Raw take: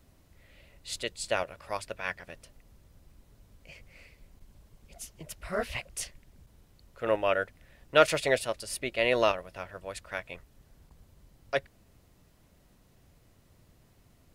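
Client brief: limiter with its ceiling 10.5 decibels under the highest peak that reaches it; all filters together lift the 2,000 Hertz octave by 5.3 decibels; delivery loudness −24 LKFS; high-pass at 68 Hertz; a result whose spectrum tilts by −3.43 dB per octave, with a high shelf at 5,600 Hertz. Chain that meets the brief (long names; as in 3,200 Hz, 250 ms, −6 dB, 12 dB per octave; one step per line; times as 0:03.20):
high-pass filter 68 Hz
parametric band 2,000 Hz +6 dB
high-shelf EQ 5,600 Hz +6.5 dB
level +7 dB
brickwall limiter −5.5 dBFS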